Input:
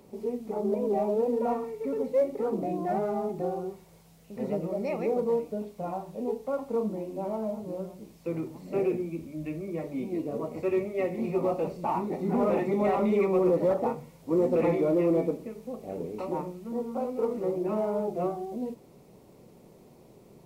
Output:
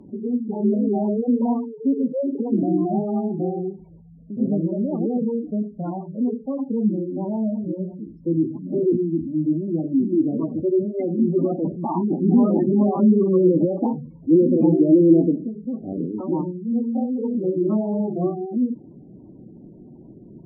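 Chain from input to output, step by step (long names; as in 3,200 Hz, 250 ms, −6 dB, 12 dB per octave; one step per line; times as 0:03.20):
gate on every frequency bin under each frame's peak −15 dB strong
low shelf with overshoot 380 Hz +6.5 dB, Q 3
treble cut that deepens with the level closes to 1,600 Hz, closed at −21 dBFS
level +3.5 dB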